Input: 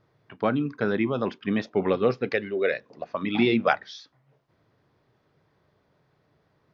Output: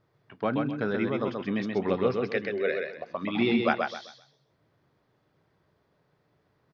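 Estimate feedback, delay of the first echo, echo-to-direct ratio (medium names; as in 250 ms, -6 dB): 28%, 130 ms, -3.5 dB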